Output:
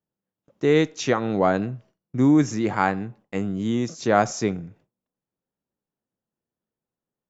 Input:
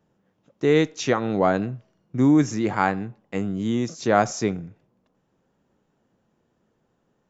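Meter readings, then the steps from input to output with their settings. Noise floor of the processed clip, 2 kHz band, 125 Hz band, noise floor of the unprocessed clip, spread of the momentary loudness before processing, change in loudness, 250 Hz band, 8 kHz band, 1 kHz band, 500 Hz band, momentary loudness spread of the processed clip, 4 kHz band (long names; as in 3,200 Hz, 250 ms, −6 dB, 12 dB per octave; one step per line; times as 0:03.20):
below −85 dBFS, 0.0 dB, 0.0 dB, −71 dBFS, 13 LU, 0.0 dB, 0.0 dB, can't be measured, 0.0 dB, 0.0 dB, 13 LU, 0.0 dB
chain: noise gate with hold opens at −50 dBFS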